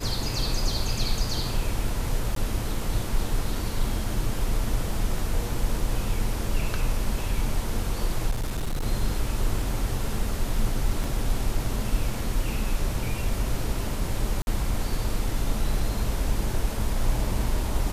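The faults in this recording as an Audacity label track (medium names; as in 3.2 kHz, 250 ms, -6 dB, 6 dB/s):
2.350000	2.360000	dropout 13 ms
8.300000	8.860000	clipped -23.5 dBFS
11.040000	11.040000	dropout 2.5 ms
14.420000	14.470000	dropout 51 ms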